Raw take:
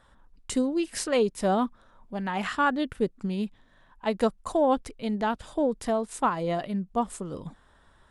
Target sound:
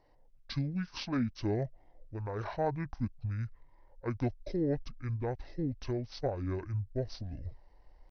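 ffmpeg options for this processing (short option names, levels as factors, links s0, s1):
-af "asetrate=24046,aresample=44100,atempo=1.83401,asubboost=boost=4.5:cutoff=77,volume=0.447"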